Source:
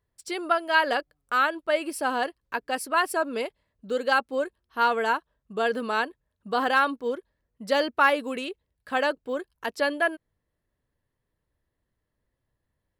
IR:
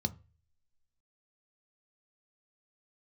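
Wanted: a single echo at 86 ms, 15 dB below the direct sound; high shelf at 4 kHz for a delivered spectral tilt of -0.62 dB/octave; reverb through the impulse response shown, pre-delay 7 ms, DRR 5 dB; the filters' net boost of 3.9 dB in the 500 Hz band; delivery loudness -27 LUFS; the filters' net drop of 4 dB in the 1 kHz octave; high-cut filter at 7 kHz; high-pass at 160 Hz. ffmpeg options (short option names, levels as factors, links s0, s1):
-filter_complex "[0:a]highpass=160,lowpass=7000,equalizer=f=500:t=o:g=7,equalizer=f=1000:t=o:g=-8.5,highshelf=f=4000:g=8.5,aecho=1:1:86:0.178,asplit=2[s0][s1];[1:a]atrim=start_sample=2205,adelay=7[s2];[s1][s2]afir=irnorm=-1:irlink=0,volume=0.447[s3];[s0][s3]amix=inputs=2:normalize=0,volume=0.708"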